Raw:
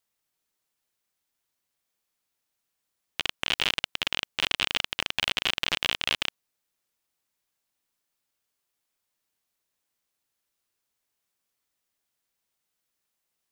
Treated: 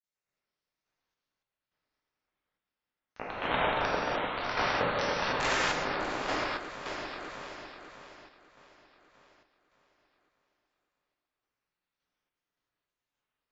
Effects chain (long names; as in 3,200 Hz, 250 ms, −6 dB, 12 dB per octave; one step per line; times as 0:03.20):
voice inversion scrambler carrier 3,900 Hz
granular cloud 125 ms, grains 9.5 per second, spray 14 ms, pitch spread up and down by 12 semitones
delay that swaps between a low-pass and a high-pass 300 ms, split 1,700 Hz, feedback 69%, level −4 dB
reverb whose tail is shaped and stops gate 320 ms flat, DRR −8 dB
sample-and-hold tremolo
level −4 dB